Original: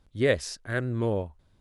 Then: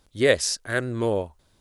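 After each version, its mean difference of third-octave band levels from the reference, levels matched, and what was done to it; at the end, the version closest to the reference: 3.0 dB: tone controls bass -7 dB, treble +8 dB; trim +5 dB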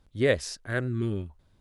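1.5 dB: time-frequency box 0.88–1.29 s, 420–1100 Hz -19 dB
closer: second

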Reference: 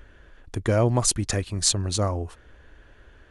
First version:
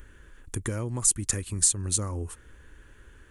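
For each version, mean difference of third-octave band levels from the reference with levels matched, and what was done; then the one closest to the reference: 4.0 dB: peaking EQ 670 Hz -13.5 dB 0.5 oct; compression 10:1, threshold -27 dBFS, peak gain reduction 11 dB; resonant high shelf 6.4 kHz +10.5 dB, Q 1.5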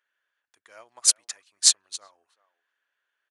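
13.5 dB: high-pass 1.2 kHz 12 dB/octave; speakerphone echo 380 ms, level -15 dB; upward expansion 2.5:1, over -36 dBFS; trim +6 dB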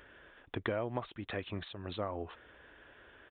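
8.5 dB: high-pass 400 Hz 6 dB/octave; compression 10:1, threshold -31 dBFS, peak gain reduction 14.5 dB; resampled via 8 kHz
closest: first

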